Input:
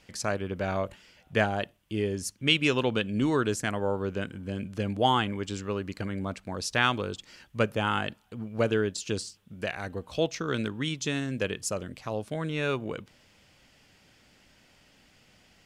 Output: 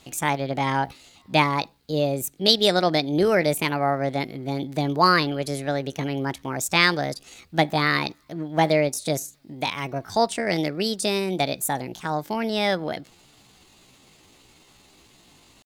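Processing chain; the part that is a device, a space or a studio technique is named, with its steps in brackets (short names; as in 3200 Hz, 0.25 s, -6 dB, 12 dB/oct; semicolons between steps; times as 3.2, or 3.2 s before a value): chipmunk voice (pitch shift +6 st); gain +6 dB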